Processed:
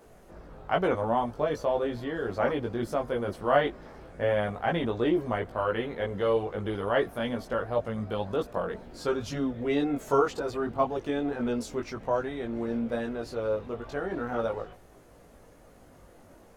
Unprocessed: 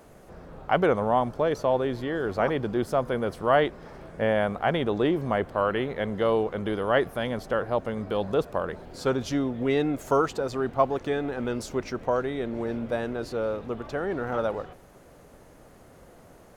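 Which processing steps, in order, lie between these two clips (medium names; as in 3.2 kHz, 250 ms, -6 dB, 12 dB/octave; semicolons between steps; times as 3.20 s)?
chorus voices 4, 0.36 Hz, delay 19 ms, depth 2.3 ms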